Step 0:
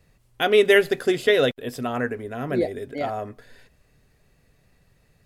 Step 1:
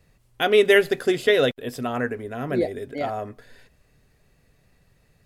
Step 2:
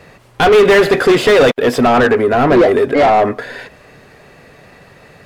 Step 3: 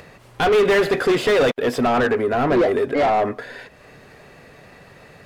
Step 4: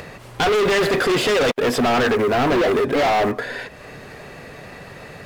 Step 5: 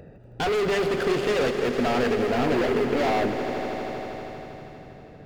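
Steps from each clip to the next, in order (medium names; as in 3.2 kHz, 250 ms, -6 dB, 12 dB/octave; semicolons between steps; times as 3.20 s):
no audible change
overdrive pedal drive 32 dB, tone 1.2 kHz, clips at -5 dBFS; trim +4.5 dB
upward compressor, threshold -31 dBFS; trim -7.5 dB
in parallel at -11 dB: bit crusher 4-bit; on the sum: saturation -23.5 dBFS, distortion -8 dB; trim +7.5 dB
local Wiener filter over 41 samples; echo with a slow build-up 80 ms, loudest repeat 5, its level -13 dB; endings held to a fixed fall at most 110 dB/s; trim -5 dB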